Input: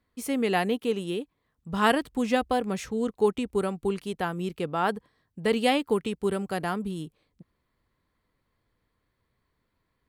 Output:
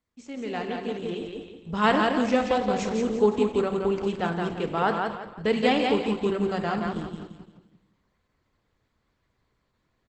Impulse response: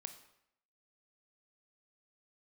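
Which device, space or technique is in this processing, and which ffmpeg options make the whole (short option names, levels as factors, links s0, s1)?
speakerphone in a meeting room: -filter_complex "[0:a]asettb=1/sr,asplit=3[s0][s1][s2];[s0]atrim=end=0.964[s3];[s1]atrim=start=0.96:end=2.38,asetpts=PTS-STARTPTS,afade=t=in:d=0.004:c=qsin,afade=t=out:st=1.416:d=0.004:c=qsin,lowpass=f=10000:w=0.5412,lowpass=f=10000:w=1.3066[s4];[s2]atrim=start=2.376[s5];[s3][s4]acrossfade=d=0.004:c1=hsin:c2=qsin[s6];[s6][s5]acrossfade=d=0.004:c1=qsin:c2=hsin,aecho=1:1:172|344|516|688|860:0.631|0.227|0.0818|0.0294|0.0106[s7];[1:a]atrim=start_sample=2205[s8];[s7][s8]afir=irnorm=-1:irlink=0,asplit=2[s9][s10];[s10]adelay=100,highpass=300,lowpass=3400,asoftclip=type=hard:threshold=0.0891,volume=0.158[s11];[s9][s11]amix=inputs=2:normalize=0,dynaudnorm=f=760:g=3:m=3.55,volume=0.631" -ar 48000 -c:a libopus -b:a 12k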